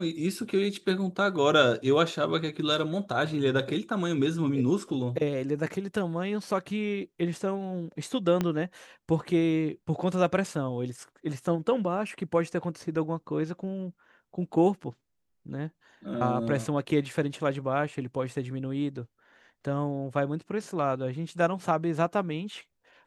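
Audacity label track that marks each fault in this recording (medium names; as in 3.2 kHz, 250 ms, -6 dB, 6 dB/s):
8.410000	8.410000	pop -14 dBFS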